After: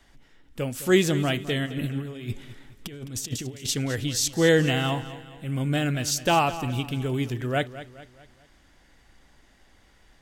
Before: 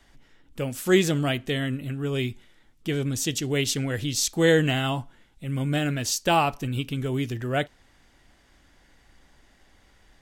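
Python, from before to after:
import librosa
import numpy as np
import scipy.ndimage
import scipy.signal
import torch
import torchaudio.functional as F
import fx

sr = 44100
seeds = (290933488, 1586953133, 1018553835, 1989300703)

y = fx.over_compress(x, sr, threshold_db=-33.0, ratio=-0.5, at=(1.65, 3.67), fade=0.02)
y = fx.echo_feedback(y, sr, ms=211, feedback_pct=45, wet_db=-14.5)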